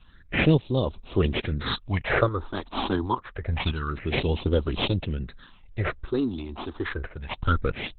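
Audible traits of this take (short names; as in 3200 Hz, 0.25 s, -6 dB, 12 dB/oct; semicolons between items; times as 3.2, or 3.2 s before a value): aliases and images of a low sample rate 8000 Hz, jitter 0%; phasing stages 6, 0.27 Hz, lowest notch 130–1800 Hz; random-step tremolo; Opus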